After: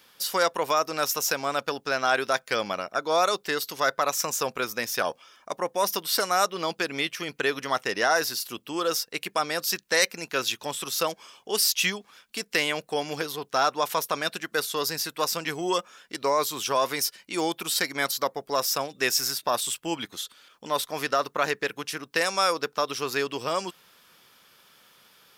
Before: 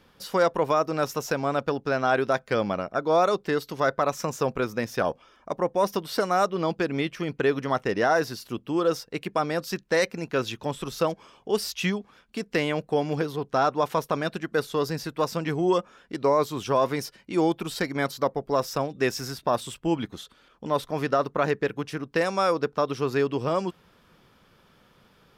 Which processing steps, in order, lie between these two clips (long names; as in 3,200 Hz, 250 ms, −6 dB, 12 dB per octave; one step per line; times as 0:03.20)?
spectral tilt +4 dB per octave